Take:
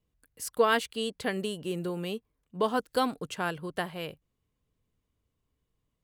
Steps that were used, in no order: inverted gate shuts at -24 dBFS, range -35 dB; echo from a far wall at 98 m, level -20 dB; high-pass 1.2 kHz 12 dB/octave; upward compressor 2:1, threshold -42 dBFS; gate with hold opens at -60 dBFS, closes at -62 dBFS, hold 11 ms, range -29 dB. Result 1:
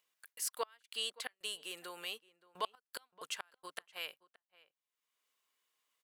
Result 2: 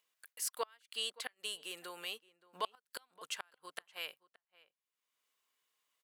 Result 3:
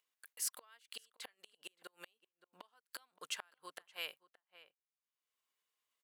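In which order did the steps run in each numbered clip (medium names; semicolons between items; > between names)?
high-pass > inverted gate > gate with hold > upward compressor > echo from a far wall; gate with hold > high-pass > upward compressor > inverted gate > echo from a far wall; gate with hold > inverted gate > echo from a far wall > upward compressor > high-pass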